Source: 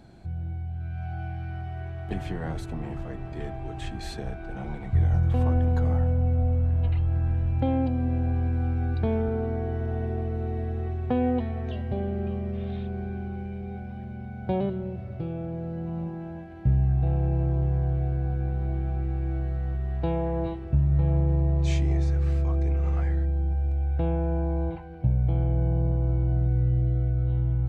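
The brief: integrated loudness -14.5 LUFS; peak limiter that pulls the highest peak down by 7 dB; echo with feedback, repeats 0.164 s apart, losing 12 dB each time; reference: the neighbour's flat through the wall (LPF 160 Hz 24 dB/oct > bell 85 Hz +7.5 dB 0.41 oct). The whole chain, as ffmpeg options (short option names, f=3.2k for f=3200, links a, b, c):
-af "alimiter=limit=-18.5dB:level=0:latency=1,lowpass=f=160:w=0.5412,lowpass=f=160:w=1.3066,equalizer=f=85:t=o:w=0.41:g=7.5,aecho=1:1:164|328|492:0.251|0.0628|0.0157,volume=11.5dB"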